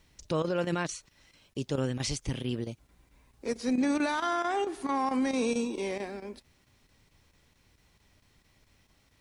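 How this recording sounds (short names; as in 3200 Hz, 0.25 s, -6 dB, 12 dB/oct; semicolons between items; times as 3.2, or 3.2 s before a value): chopped level 4.5 Hz, depth 65%, duty 90%; a quantiser's noise floor 12-bit, dither none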